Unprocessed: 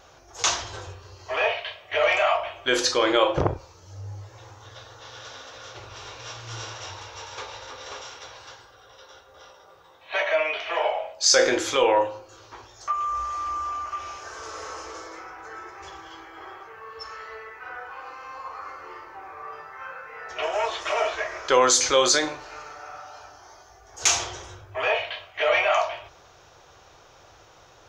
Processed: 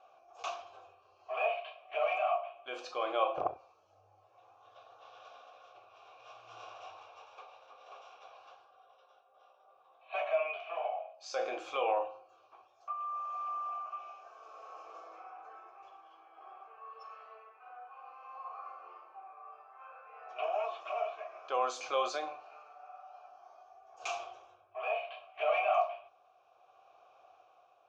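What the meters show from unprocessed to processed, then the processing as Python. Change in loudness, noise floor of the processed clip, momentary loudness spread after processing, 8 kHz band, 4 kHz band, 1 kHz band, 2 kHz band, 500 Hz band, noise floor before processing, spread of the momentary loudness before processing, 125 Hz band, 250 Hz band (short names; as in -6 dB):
-12.5 dB, -66 dBFS, 22 LU, -29.5 dB, -21.0 dB, -8.5 dB, -15.5 dB, -11.0 dB, -53 dBFS, 21 LU, under -30 dB, -21.5 dB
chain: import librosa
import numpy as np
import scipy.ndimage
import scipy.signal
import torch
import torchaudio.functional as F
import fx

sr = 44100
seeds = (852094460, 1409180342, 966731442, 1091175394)

y = fx.vowel_filter(x, sr, vowel='a')
y = y * (1.0 - 0.46 / 2.0 + 0.46 / 2.0 * np.cos(2.0 * np.pi * 0.59 * (np.arange(len(y)) / sr)))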